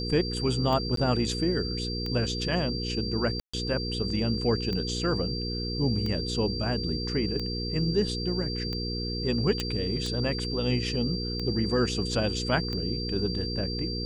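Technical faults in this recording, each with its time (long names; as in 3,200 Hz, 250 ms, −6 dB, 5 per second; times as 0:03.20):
mains hum 60 Hz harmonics 8 −33 dBFS
scratch tick 45 rpm −21 dBFS
whistle 4,700 Hz −34 dBFS
0:00.96–0:00.97: drop-out 13 ms
0:03.40–0:03.54: drop-out 135 ms
0:09.60: click −14 dBFS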